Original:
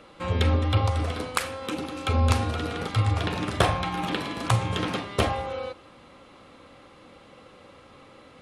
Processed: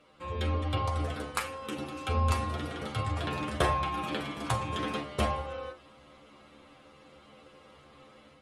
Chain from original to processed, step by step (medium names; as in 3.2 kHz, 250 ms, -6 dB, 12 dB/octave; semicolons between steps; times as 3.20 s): dynamic bell 4.4 kHz, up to -3 dB, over -45 dBFS, Q 0.77; inharmonic resonator 71 Hz, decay 0.27 s, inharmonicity 0.002; level rider gain up to 6 dB; trim -3 dB